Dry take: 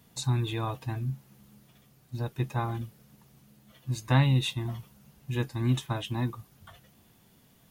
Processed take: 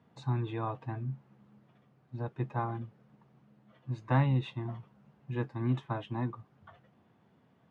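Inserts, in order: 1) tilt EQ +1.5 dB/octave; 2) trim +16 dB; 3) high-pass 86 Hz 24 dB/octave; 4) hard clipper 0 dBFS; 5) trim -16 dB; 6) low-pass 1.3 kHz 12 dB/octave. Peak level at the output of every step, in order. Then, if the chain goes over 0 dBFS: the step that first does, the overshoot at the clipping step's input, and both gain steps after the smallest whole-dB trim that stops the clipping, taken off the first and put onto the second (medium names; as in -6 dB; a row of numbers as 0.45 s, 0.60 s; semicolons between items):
-10.0 dBFS, +6.0 dBFS, +3.5 dBFS, 0.0 dBFS, -16.0 dBFS, -16.0 dBFS; step 2, 3.5 dB; step 2 +12 dB, step 5 -12 dB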